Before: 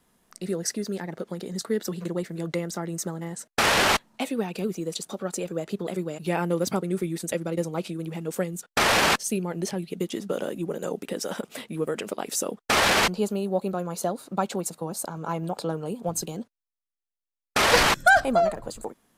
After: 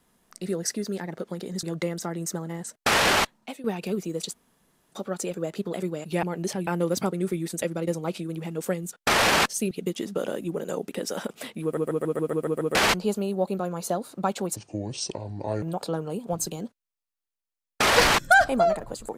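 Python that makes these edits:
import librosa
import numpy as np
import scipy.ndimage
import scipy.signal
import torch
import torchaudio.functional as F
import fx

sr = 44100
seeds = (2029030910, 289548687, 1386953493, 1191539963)

y = fx.edit(x, sr, fx.cut(start_s=1.63, length_s=0.72),
    fx.fade_out_to(start_s=3.85, length_s=0.51, floor_db=-14.5),
    fx.insert_room_tone(at_s=5.06, length_s=0.58),
    fx.move(start_s=9.41, length_s=0.44, to_s=6.37),
    fx.stutter_over(start_s=11.77, slice_s=0.14, count=8),
    fx.speed_span(start_s=14.7, length_s=0.68, speed=0.64), tone=tone)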